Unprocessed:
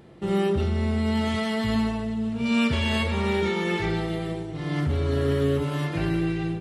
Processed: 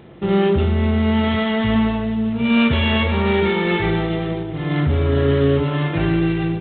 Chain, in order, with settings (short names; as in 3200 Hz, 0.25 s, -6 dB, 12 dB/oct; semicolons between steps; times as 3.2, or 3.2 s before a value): gain +7 dB; G.726 24 kbps 8000 Hz